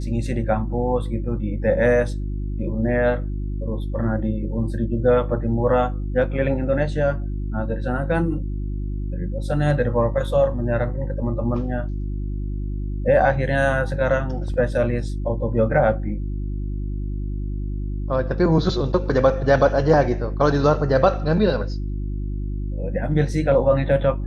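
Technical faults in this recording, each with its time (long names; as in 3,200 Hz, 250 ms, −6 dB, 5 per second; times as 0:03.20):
mains hum 50 Hz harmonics 7 −26 dBFS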